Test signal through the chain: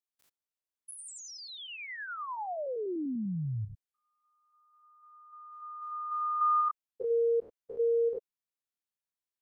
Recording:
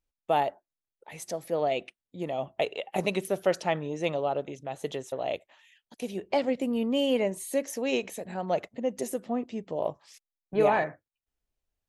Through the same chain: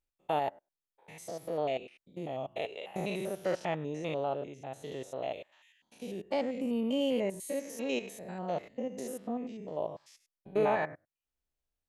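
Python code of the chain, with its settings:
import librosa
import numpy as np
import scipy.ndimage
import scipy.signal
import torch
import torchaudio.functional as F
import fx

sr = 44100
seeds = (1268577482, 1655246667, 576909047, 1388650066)

y = fx.spec_steps(x, sr, hold_ms=100)
y = y * 10.0 ** (-3.0 / 20.0)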